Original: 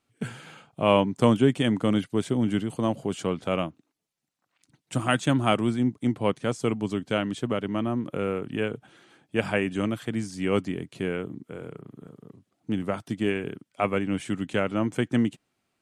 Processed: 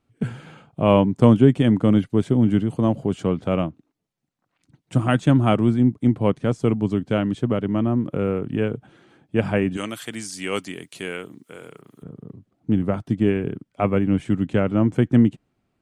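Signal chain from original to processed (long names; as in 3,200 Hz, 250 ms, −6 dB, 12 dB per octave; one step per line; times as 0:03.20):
spectral tilt −2.5 dB per octave, from 0:09.76 +3 dB per octave, from 0:12.02 −3 dB per octave
level +1.5 dB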